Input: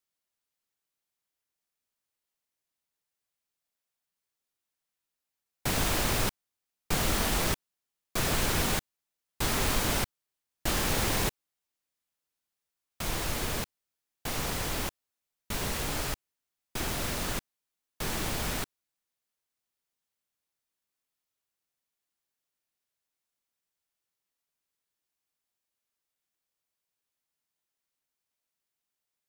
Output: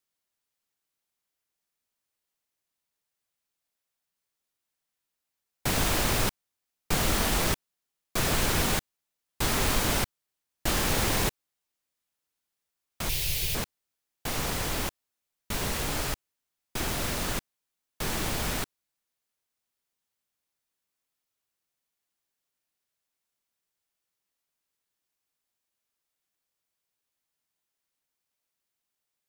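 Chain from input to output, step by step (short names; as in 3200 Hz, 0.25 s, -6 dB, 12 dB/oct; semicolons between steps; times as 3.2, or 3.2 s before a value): 13.09–13.55 EQ curve 150 Hz 0 dB, 240 Hz -30 dB, 370 Hz -8 dB, 1300 Hz -19 dB, 2500 Hz +3 dB, 4800 Hz +4 dB, 7600 Hz 0 dB, 14000 Hz +7 dB; gain +2 dB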